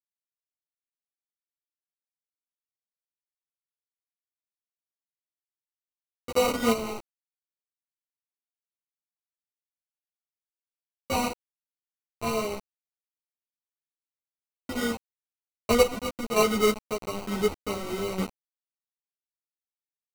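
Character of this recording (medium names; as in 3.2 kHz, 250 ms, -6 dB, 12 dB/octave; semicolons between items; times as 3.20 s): aliases and images of a low sample rate 1.7 kHz, jitter 0%; chopped level 1.1 Hz, depth 65%, duty 40%; a quantiser's noise floor 6-bit, dither none; a shimmering, thickened sound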